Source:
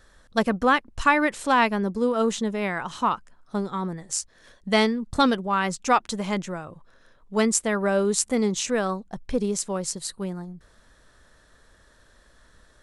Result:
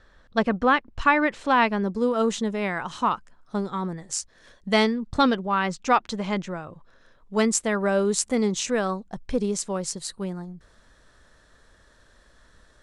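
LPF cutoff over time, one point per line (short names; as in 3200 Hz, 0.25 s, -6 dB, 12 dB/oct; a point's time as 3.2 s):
1.54 s 4000 Hz
2.11 s 8900 Hz
4.76 s 8900 Hz
5.18 s 5200 Hz
6.45 s 5200 Hz
7.38 s 9300 Hz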